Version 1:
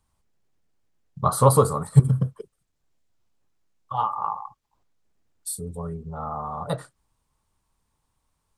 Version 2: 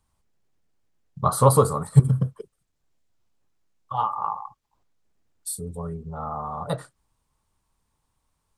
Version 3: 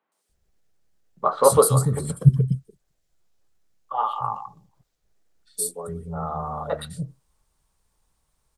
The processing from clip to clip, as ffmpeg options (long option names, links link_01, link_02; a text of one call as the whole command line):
ffmpeg -i in.wav -af anull out.wav
ffmpeg -i in.wav -filter_complex "[0:a]equalizer=frequency=100:width_type=o:width=0.67:gain=-9,equalizer=frequency=250:width_type=o:width=0.67:gain=-4,equalizer=frequency=1000:width_type=o:width=0.67:gain=-6,acrossover=split=260|2600[link_01][link_02][link_03];[link_03]adelay=120[link_04];[link_01]adelay=290[link_05];[link_05][link_02][link_04]amix=inputs=3:normalize=0,volume=5dB" out.wav